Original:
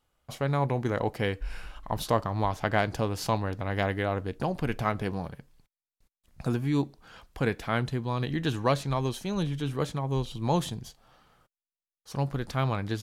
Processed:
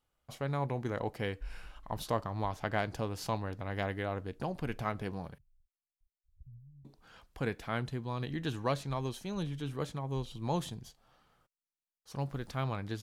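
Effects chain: 5.38–6.85 s: inverse Chebyshev band-stop 370–8400 Hz, stop band 70 dB; 12.19–12.59 s: crackle 270 per s -49 dBFS; trim -7 dB

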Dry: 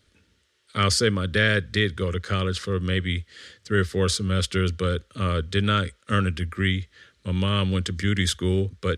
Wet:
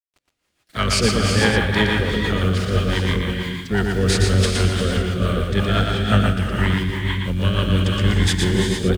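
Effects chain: in parallel at -10 dB: overload inside the chain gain 18.5 dB; on the sum: bit crusher 8-bit; gated-style reverb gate 470 ms rising, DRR 1 dB; harmony voices -12 st -5 dB, +4 st -16 dB; rotary cabinet horn 6 Hz; on a send: delay 117 ms -4 dB

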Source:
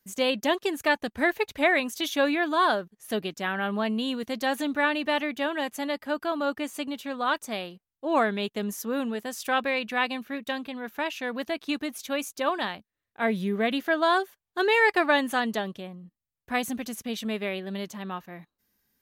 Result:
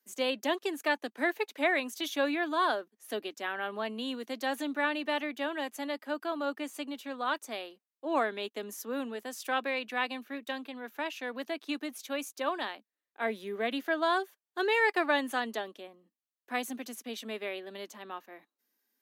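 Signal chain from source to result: steep high-pass 240 Hz 48 dB/octave; trim -5.5 dB

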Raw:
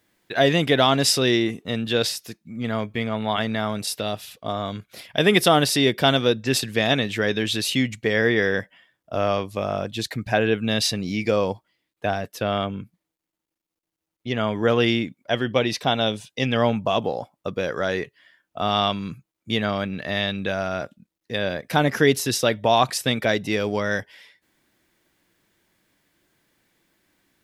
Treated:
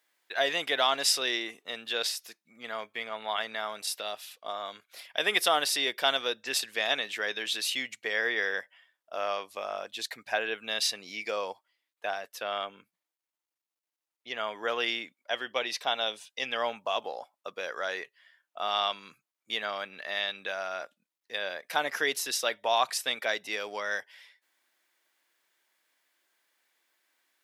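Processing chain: high-pass 730 Hz 12 dB/octave; trim -5 dB

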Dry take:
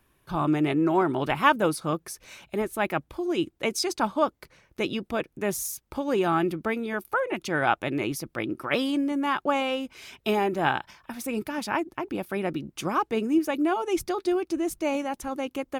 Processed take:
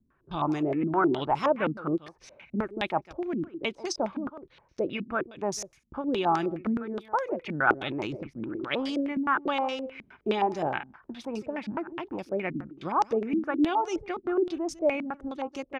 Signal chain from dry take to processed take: delay 150 ms -17 dB; 7.72–8.99 s: transient shaper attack -3 dB, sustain +8 dB; step-sequenced low-pass 9.6 Hz 230–5600 Hz; trim -5.5 dB

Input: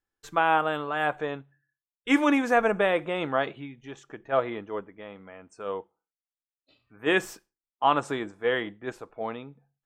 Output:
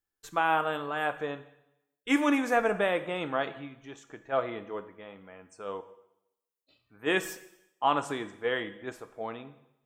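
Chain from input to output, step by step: treble shelf 7.8 kHz +9.5 dB; plate-style reverb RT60 0.84 s, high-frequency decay 1×, DRR 11 dB; trim -4 dB

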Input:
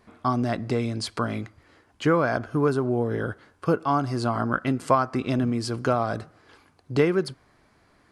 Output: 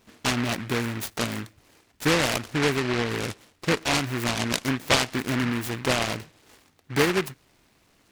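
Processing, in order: peaking EQ 76 Hz -3.5 dB 1.1 oct; delay time shaken by noise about 1.6 kHz, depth 0.26 ms; trim -1 dB

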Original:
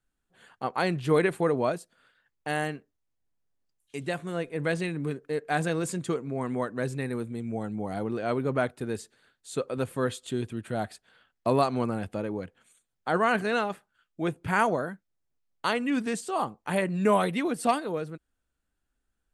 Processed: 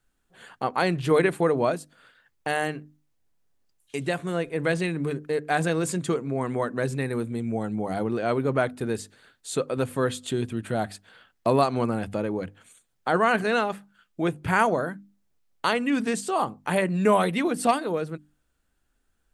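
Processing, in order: hum notches 50/100/150/200/250/300 Hz; in parallel at +1 dB: compression, threshold -38 dBFS, peak gain reduction 19 dB; on the sum: trim +1.5 dB

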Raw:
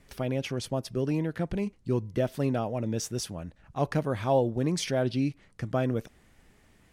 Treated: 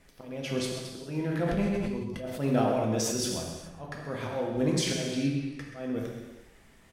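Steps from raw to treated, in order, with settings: peaking EQ 100 Hz -6.5 dB 0.95 oct; hum notches 60/120/180/240/300/360/420 Hz; slow attack 350 ms; delay 130 ms -12 dB; gated-style reverb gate 460 ms falling, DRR -1.5 dB; 1.23–3.39 s: decay stretcher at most 21 dB/s

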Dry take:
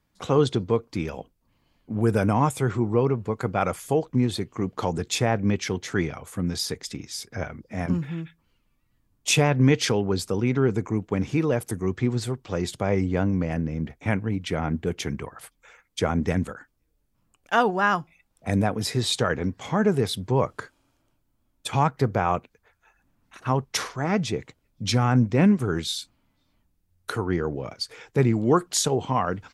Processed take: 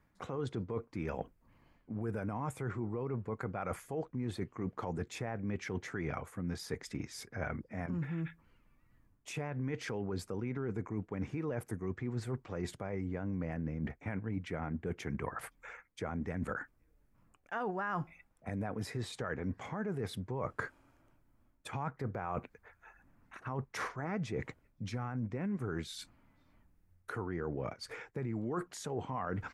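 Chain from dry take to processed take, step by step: peak limiter -17.5 dBFS, peak gain reduction 10.5 dB; reverse; compression 6:1, threshold -37 dBFS, peak gain reduction 15 dB; reverse; resonant high shelf 2.6 kHz -8 dB, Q 1.5; trim +2 dB

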